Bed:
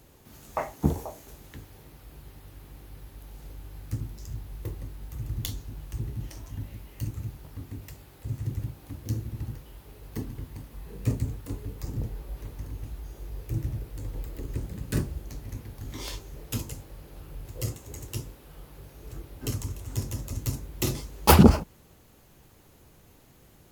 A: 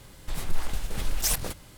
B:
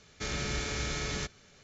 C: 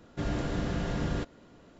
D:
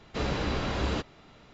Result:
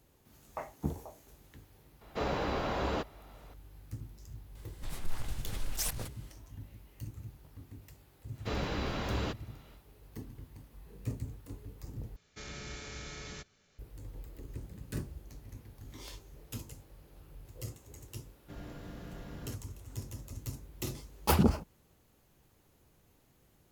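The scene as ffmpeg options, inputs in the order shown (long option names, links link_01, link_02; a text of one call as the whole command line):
ffmpeg -i bed.wav -i cue0.wav -i cue1.wav -i cue2.wav -i cue3.wav -filter_complex "[4:a]asplit=2[link_01][link_02];[0:a]volume=-10.5dB[link_03];[link_01]equalizer=frequency=730:width=0.61:gain=9[link_04];[link_03]asplit=2[link_05][link_06];[link_05]atrim=end=12.164[link_07];[2:a]atrim=end=1.63,asetpts=PTS-STARTPTS,volume=-10.5dB[link_08];[link_06]atrim=start=13.786[link_09];[link_04]atrim=end=1.53,asetpts=PTS-STARTPTS,volume=-7.5dB,afade=type=in:duration=0.004:curve=hsin,afade=type=out:start_time=1.526:duration=0.004:curve=hsin,adelay=2010[link_10];[1:a]atrim=end=1.77,asetpts=PTS-STARTPTS,volume=-8.5dB,afade=type=in:duration=0.004:curve=hsin,afade=type=out:start_time=1.766:duration=0.004:curve=hsin,adelay=4550[link_11];[link_02]atrim=end=1.53,asetpts=PTS-STARTPTS,volume=-5dB,afade=type=in:duration=0.1,afade=type=out:start_time=1.43:duration=0.1,adelay=8310[link_12];[3:a]atrim=end=1.79,asetpts=PTS-STARTPTS,volume=-15dB,afade=type=in:duration=0.004:curve=hsin,afade=type=out:start_time=1.786:duration=0.004:curve=hsin,adelay=18310[link_13];[link_07][link_08]acrossfade=duration=0.004:curve1=hsin:curve2=hsin[link_14];[link_14][link_09]acrossfade=duration=0.004:curve1=hsin:curve2=hsin[link_15];[link_15][link_10][link_11][link_12][link_13]amix=inputs=5:normalize=0" out.wav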